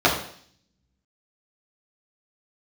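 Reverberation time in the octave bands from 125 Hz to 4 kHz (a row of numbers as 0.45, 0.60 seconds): 0.90, 0.70, 0.55, 0.55, 0.60, 0.70 seconds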